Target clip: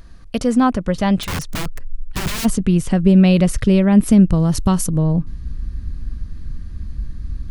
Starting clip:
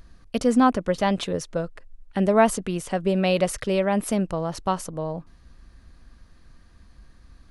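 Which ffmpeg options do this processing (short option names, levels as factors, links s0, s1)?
-filter_complex "[0:a]asettb=1/sr,asplit=3[s0][s1][s2];[s0]atrim=end=4.334[s3];[s1]atrim=start=4.33:end=4.96,asetpts=PTS-STARTPTS,afade=t=in:d=0.004:c=qsin,afade=t=out:st=0.626:d=0.004:c=qsin,aemphasis=mode=production:type=50fm[s4];[s2]atrim=start=4.956[s5];[s3][s4]acrossfade=d=0.004:c1=hsin:c2=qsin[s6];[s6][s5]acrossfade=d=0.004:c1=qsin:c2=hsin,asplit=2[s7][s8];[s8]acompressor=threshold=0.0282:ratio=6,volume=0.891[s9];[s7][s9]amix=inputs=2:normalize=0,asplit=3[s10][s11][s12];[s10]afade=t=out:st=1.22:d=0.02[s13];[s11]aeval=exprs='(mod(11.9*val(0)+1,2)-1)/11.9':c=same,afade=t=in:st=1.22:d=0.02,afade=t=out:st=2.44:d=0.02[s14];[s12]afade=t=in:st=2.44:d=0.02[s15];[s13][s14][s15]amix=inputs=3:normalize=0,asubboost=boost=8:cutoff=230,volume=1.12"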